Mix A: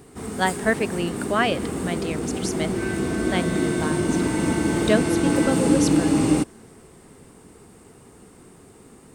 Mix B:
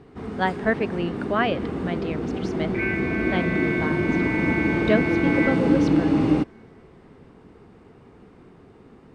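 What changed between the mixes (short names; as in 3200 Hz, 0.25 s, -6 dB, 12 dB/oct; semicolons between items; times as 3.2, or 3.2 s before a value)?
second sound: add synth low-pass 2300 Hz, resonance Q 14; master: add air absorption 250 m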